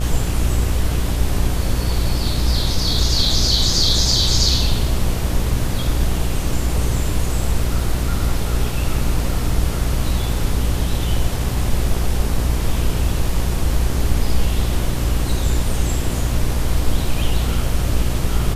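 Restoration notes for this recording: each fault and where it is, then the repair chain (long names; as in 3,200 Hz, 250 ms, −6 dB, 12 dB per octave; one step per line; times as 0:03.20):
mains buzz 60 Hz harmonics 21 −22 dBFS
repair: hum removal 60 Hz, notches 21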